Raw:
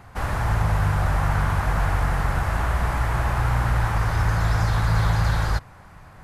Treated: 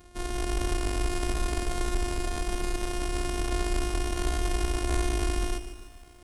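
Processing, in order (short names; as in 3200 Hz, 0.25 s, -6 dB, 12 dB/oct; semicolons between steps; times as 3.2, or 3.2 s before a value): sample sorter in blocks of 64 samples; pitch shift -11.5 st; high shelf 10000 Hz +10 dB; lo-fi delay 0.147 s, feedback 55%, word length 8-bit, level -11 dB; gain -6.5 dB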